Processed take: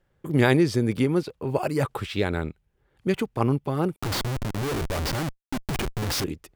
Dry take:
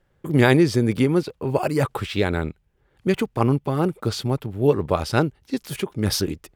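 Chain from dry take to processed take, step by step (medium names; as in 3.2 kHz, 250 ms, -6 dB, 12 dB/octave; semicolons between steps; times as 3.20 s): 3.96–6.24 s: Schmitt trigger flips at -30.5 dBFS; trim -3.5 dB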